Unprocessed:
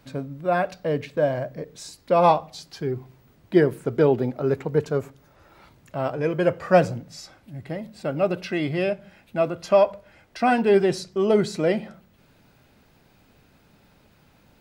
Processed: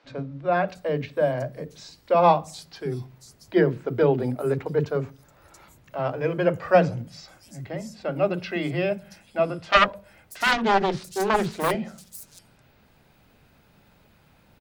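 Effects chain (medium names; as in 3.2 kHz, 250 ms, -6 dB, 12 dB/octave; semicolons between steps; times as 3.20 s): 9.56–11.71 s: self-modulated delay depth 0.94 ms; three bands offset in time mids, lows, highs 40/680 ms, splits 300/6000 Hz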